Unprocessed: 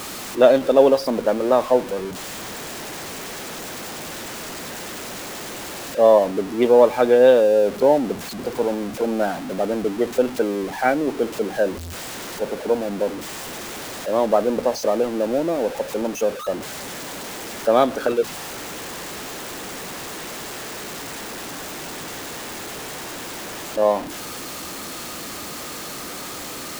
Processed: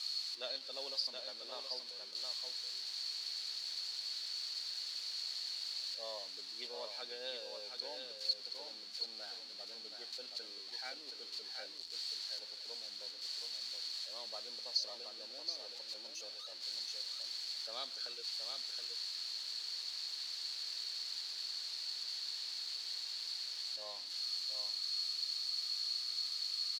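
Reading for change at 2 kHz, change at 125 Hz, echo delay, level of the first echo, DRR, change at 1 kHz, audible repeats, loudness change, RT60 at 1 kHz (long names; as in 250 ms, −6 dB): −22.0 dB, below −40 dB, 723 ms, −6.0 dB, no reverb audible, −30.5 dB, 1, −17.5 dB, no reverb audible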